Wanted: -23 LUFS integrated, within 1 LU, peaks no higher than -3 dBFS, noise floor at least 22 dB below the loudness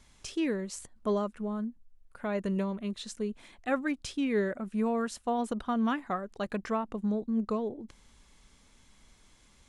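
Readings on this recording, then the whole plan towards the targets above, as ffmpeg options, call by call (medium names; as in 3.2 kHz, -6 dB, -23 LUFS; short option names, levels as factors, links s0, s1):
loudness -33.0 LUFS; peak level -17.5 dBFS; loudness target -23.0 LUFS
-> -af "volume=3.16"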